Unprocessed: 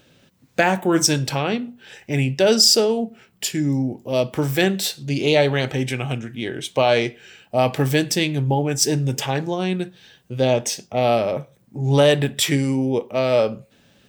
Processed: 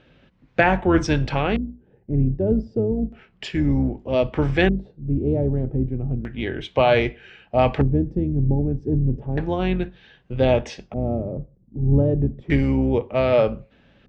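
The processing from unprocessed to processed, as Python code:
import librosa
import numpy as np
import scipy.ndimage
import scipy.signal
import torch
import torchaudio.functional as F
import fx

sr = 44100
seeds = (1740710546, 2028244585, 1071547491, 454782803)

y = fx.octave_divider(x, sr, octaves=2, level_db=-4.0)
y = scipy.signal.sosfilt(scipy.signal.butter(2, 6800.0, 'lowpass', fs=sr, output='sos'), y)
y = fx.filter_lfo_lowpass(y, sr, shape='square', hz=0.32, low_hz=310.0, high_hz=2500.0, q=0.93)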